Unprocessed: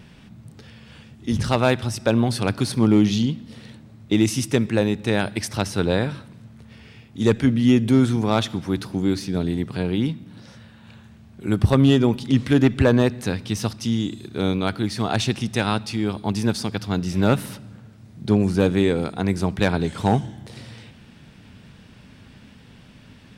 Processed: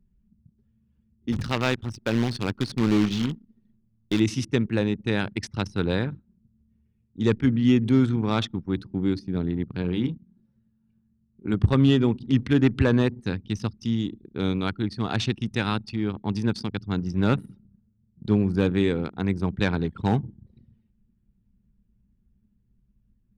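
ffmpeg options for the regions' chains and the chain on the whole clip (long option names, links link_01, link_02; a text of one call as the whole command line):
ffmpeg -i in.wav -filter_complex "[0:a]asettb=1/sr,asplit=3[link_01][link_02][link_03];[link_01]atrim=end=1.324[link_04];[link_02]atrim=start=1.32:end=4.2,asetpts=PTS-STARTPTS,afade=type=in:duration=0.004:curve=qsin,afade=type=out:start_time=2.876:duration=0.004:curve=qsin,aeval=exprs='if(lt(val(0),0),0.708*val(0),val(0))':channel_layout=same,lowshelf=frequency=120:gain=-4.5,acrusher=bits=2:mode=log:mix=0:aa=0.000001[link_05];[link_03]atrim=start=4.196[link_06];[link_04][link_05]acrossfade=duration=0.004:curve1=hsin:curve2=qsin[link_07];[link_07][link_06]acrossfade=duration=0.004:curve1=qsin:curve2=hsin,asettb=1/sr,asplit=3[link_08][link_09][link_10];[link_08]atrim=end=9.824[link_11];[link_09]atrim=start=9.82:end=11.54,asetpts=PTS-STARTPTS,afade=type=in:duration=0.004:curve=qsin,afade=type=out:start_time=1.716:duration=0.004:curve=qsin,lowshelf=frequency=200:gain=-2,bandreject=frequency=50:width_type=h:width=6,bandreject=frequency=100:width_type=h:width=6,bandreject=frequency=150:width_type=h:width=6,asplit=2[link_12][link_13];[link_13]adelay=23,volume=-7.5dB[link_14];[link_12][link_14]amix=inputs=2:normalize=0,atrim=end_sample=75852[link_15];[link_10]atrim=start=11.536[link_16];[link_11][link_15]acrossfade=duration=0.004:curve1=hsin:curve2=qsin[link_17];[link_17][link_16]acrossfade=duration=0.004:curve1=qsin:curve2=hsin,anlmdn=100,equalizer=frequency=650:width=1.9:gain=-7,acrossover=split=6200[link_18][link_19];[link_19]acompressor=threshold=-51dB:ratio=4:attack=1:release=60[link_20];[link_18][link_20]amix=inputs=2:normalize=0,volume=-2.5dB" out.wav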